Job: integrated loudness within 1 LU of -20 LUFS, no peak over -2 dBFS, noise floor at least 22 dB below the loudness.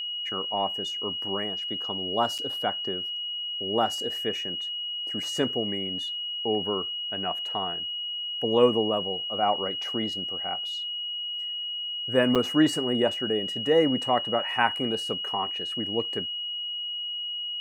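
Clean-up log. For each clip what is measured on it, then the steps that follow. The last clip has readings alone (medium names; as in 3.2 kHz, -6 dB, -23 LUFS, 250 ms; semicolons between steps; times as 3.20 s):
dropouts 2; longest dropout 6.8 ms; steady tone 2.9 kHz; tone level -30 dBFS; loudness -27.0 LUFS; peak level -6.5 dBFS; loudness target -20.0 LUFS
-> interpolate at 2.38/12.35 s, 6.8 ms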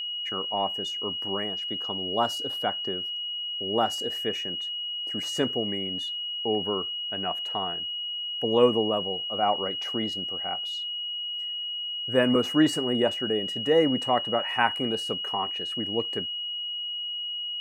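dropouts 0; steady tone 2.9 kHz; tone level -30 dBFS
-> band-stop 2.9 kHz, Q 30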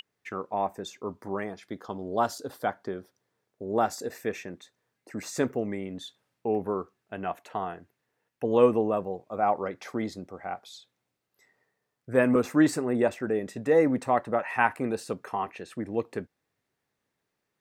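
steady tone not found; loudness -29.0 LUFS; peak level -7.0 dBFS; loudness target -20.0 LUFS
-> trim +9 dB; peak limiter -2 dBFS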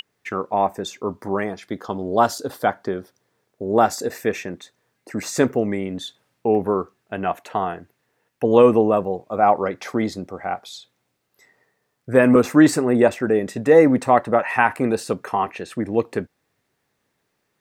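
loudness -20.5 LUFS; peak level -2.0 dBFS; noise floor -73 dBFS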